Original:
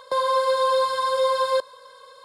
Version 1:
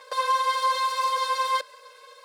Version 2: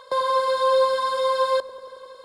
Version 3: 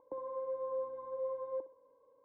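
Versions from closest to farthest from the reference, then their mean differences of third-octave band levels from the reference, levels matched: 2, 1, 3; 2.0, 4.5, 10.5 dB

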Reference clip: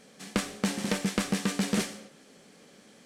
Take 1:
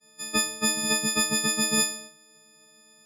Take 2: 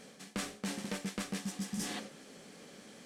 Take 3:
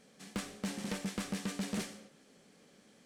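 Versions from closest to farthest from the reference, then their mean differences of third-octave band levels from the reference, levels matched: 3, 2, 1; 1.5, 6.0, 9.5 dB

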